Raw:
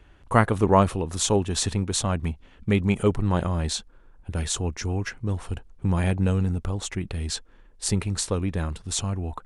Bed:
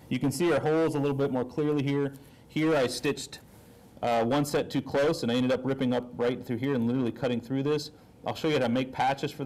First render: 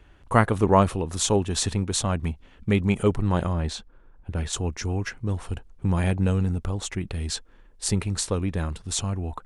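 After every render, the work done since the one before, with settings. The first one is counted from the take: 3.53–4.53 s: treble shelf 4.7 kHz -12 dB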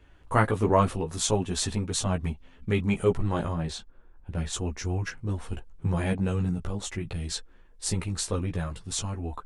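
chorus voices 6, 0.36 Hz, delay 15 ms, depth 4.3 ms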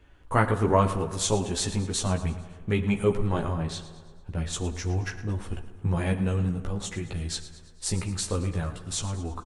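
feedback delay 111 ms, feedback 52%, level -15 dB; plate-style reverb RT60 1.8 s, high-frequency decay 0.4×, DRR 12.5 dB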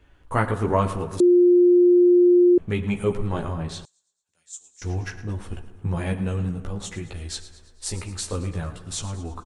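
1.20–2.58 s: bleep 354 Hz -11.5 dBFS; 3.85–4.82 s: band-pass filter 7.3 kHz, Q 5.3; 7.09–8.33 s: peaking EQ 160 Hz -11 dB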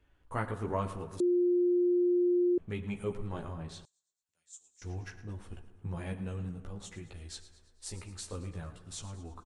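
trim -12 dB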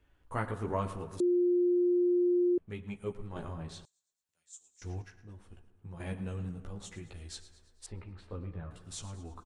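1.75–3.36 s: upward expansion, over -50 dBFS; 5.02–6.00 s: gain -8 dB; 7.86–8.71 s: distance through air 470 m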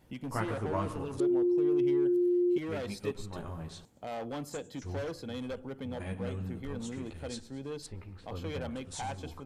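add bed -12.5 dB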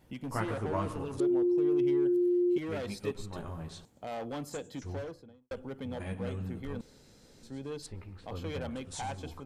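4.76–5.51 s: studio fade out; 6.81–7.43 s: room tone

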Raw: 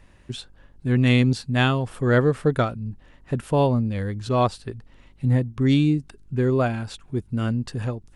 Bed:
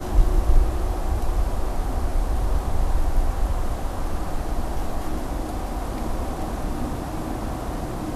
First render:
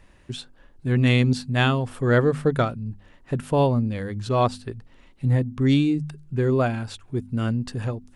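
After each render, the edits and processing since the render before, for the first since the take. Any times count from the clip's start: de-hum 50 Hz, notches 5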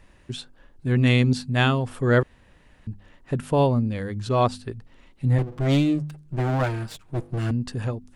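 2.23–2.87 s: room tone; 5.38–7.51 s: comb filter that takes the minimum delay 6.4 ms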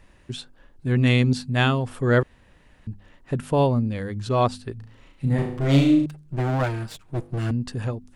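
4.76–6.06 s: flutter echo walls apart 6.2 m, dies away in 0.52 s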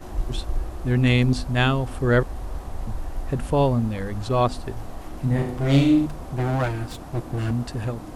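add bed -9 dB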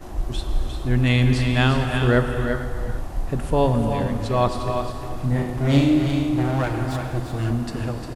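on a send: delay 353 ms -7.5 dB; on the sum: gated-style reverb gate 490 ms flat, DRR 5 dB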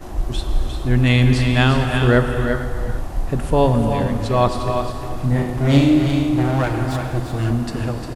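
trim +3.5 dB; peak limiter -3 dBFS, peak gain reduction 1 dB

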